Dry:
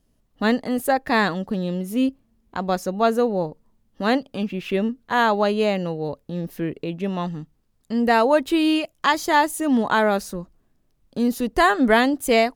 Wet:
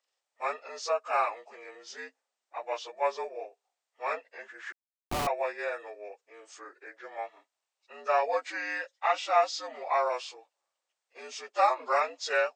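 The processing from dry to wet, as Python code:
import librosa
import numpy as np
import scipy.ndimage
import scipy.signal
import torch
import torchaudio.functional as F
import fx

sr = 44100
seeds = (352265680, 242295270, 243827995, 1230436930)

y = fx.partial_stretch(x, sr, pct=81)
y = scipy.signal.sosfilt(scipy.signal.cheby2(4, 60, 180.0, 'highpass', fs=sr, output='sos'), y)
y = fx.schmitt(y, sr, flips_db=-23.0, at=(4.72, 5.27))
y = y * librosa.db_to_amplitude(-4.0)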